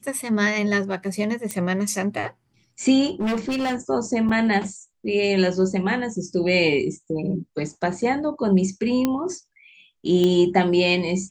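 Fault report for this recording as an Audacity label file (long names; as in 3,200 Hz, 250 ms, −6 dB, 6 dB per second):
1.510000	1.510000	click −13 dBFS
3.060000	3.760000	clipping −20.5 dBFS
4.290000	4.290000	drop-out 4.9 ms
9.050000	9.050000	click −8 dBFS
10.240000	10.240000	click −11 dBFS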